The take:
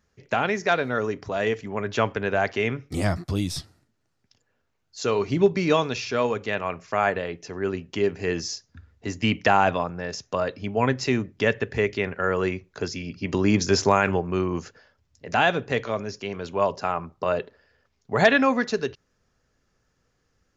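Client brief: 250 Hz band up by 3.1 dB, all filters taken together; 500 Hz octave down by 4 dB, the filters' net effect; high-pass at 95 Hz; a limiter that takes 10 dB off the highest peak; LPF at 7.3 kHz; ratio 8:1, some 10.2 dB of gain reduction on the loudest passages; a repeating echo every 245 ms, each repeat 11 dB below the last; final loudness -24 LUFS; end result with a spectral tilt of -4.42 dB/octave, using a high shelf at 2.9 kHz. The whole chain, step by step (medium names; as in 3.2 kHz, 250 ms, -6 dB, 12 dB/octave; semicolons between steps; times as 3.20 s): high-pass 95 Hz; low-pass 7.3 kHz; peaking EQ 250 Hz +6 dB; peaking EQ 500 Hz -7.5 dB; treble shelf 2.9 kHz +6 dB; compression 8:1, threshold -24 dBFS; peak limiter -19.5 dBFS; feedback delay 245 ms, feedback 28%, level -11 dB; trim +7.5 dB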